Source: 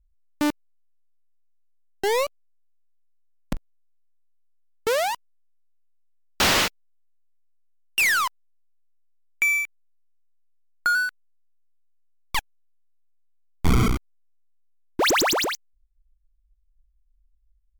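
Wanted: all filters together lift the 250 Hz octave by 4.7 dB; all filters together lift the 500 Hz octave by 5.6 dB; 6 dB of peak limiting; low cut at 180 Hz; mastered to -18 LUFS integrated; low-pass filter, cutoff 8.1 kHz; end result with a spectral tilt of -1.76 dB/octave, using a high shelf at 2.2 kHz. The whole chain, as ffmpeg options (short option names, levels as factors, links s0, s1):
-af "highpass=180,lowpass=8100,equalizer=f=250:t=o:g=5.5,equalizer=f=500:t=o:g=5,highshelf=f=2200:g=6,volume=1.5,alimiter=limit=0.376:level=0:latency=1"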